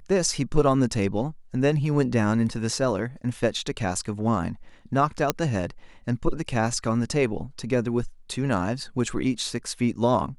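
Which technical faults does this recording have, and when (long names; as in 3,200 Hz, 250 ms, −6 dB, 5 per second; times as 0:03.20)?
0:05.30: click −5 dBFS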